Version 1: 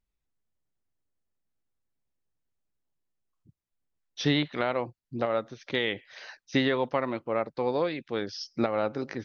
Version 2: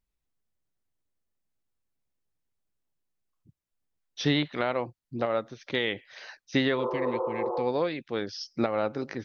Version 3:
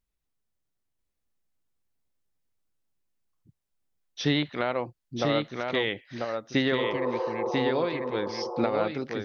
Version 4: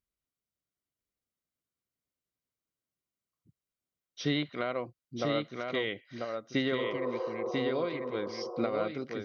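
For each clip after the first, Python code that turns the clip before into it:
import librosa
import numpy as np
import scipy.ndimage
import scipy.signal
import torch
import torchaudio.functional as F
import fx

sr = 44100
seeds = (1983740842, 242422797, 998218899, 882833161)

y1 = fx.spec_repair(x, sr, seeds[0], start_s=6.82, length_s=0.75, low_hz=350.0, high_hz=1500.0, source='both')
y2 = y1 + 10.0 ** (-4.0 / 20.0) * np.pad(y1, (int(992 * sr / 1000.0), 0))[:len(y1)]
y3 = fx.notch_comb(y2, sr, f0_hz=860.0)
y3 = y3 * librosa.db_to_amplitude(-4.5)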